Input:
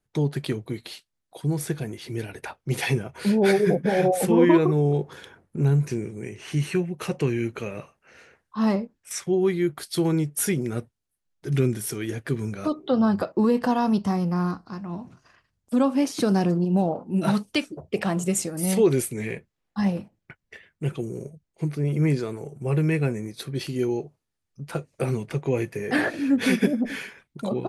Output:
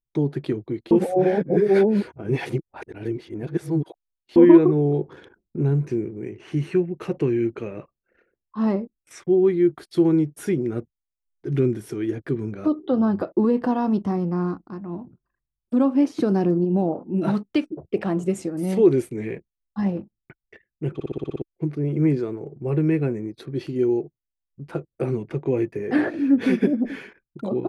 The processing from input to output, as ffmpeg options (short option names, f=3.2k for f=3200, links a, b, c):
-filter_complex "[0:a]asplit=11[a][b][c][d][e][f][g][h][i][j][k];[a]atrim=end=0.912[l];[b]atrim=start=0.908:end=4.362,asetpts=PTS-STARTPTS,areverse[m];[c]atrim=start=4.358:end=21.002[n];[d]atrim=start=20.938:end=21.002[o];[e]atrim=start=20.938:end=21.002[p];[f]atrim=start=20.938:end=21.002[q];[g]atrim=start=20.938:end=21.002[r];[h]atrim=start=20.938:end=21.002[s];[i]atrim=start=20.938:end=21.002[t];[j]atrim=start=20.938:end=21.002[u];[k]atrim=start=21.418[v];[l][m]acrossfade=d=0.004:c1=hsin:c2=hsin[w];[w][n]acrossfade=d=0.004:c1=hsin:c2=hsin[x];[x][o]acrossfade=d=0.004:c1=hsin:c2=hsin[y];[y][p]acrossfade=d=0.004:c1=hsin:c2=hsin[z];[z][q]acrossfade=d=0.004:c1=hsin:c2=hsin[aa];[aa][r]acrossfade=d=0.004:c1=hsin:c2=hsin[ab];[ab][s]acrossfade=d=0.004:c1=hsin:c2=hsin[ac];[ac][t]acrossfade=d=0.004:c1=hsin:c2=hsin[ad];[ad][u]acrossfade=d=0.004:c1=hsin:c2=hsin[ae];[ae][v]acrossfade=d=0.004:c1=hsin:c2=hsin,anlmdn=0.0251,lowpass=f=1.7k:p=1,equalizer=f=330:t=o:w=0.63:g=8.5,volume=-1.5dB"